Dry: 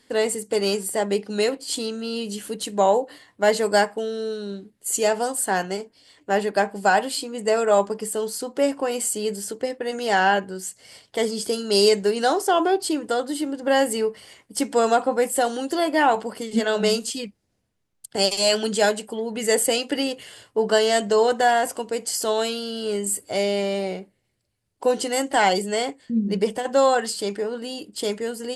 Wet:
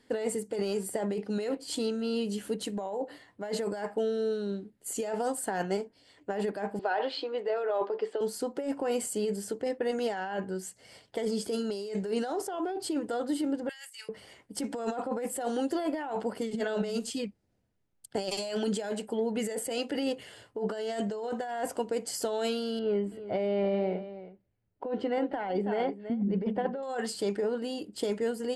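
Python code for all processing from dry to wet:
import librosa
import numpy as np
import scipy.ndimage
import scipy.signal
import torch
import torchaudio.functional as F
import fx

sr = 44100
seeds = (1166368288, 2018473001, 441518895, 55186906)

y = fx.chain(x, sr, fx.cheby1_bandpass(low_hz=360.0, high_hz=4000.0, order=3),
    fx.over_compress(threshold_db=-23.0, ratio=-1.0), at=(6.79, 8.21))
y = fx.chain(y, sr, fx.bessel_highpass(hz=2700.0, order=4),
    fx.over_compress(threshold_db=-40.0, ratio=-1.0), at=(13.69, 14.09))
y = fx.chain(y, sr, fx.air_absorb(metres=380.0),
    fx.echo_single(ms=325, db=-14.0), at=(22.79, 26.83))
y = fx.over_compress(y, sr, threshold_db=-25.0, ratio=-1.0)
y = fx.high_shelf(y, sr, hz=2300.0, db=-9.5)
y = fx.notch(y, sr, hz=1100.0, q=13.0)
y = y * librosa.db_to_amplitude(-4.5)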